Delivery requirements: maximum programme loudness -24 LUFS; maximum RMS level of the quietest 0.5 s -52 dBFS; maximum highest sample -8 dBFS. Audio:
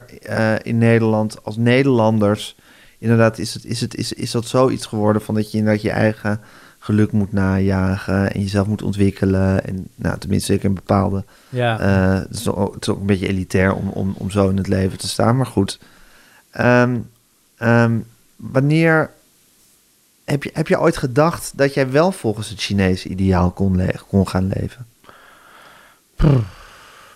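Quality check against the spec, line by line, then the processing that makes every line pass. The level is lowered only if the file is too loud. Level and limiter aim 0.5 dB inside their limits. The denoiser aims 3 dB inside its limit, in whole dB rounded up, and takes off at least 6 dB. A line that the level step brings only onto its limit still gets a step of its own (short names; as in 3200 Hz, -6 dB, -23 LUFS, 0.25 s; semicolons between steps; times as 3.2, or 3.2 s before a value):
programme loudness -18.5 LUFS: fail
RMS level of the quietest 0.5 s -57 dBFS: OK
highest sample -3.5 dBFS: fail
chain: gain -6 dB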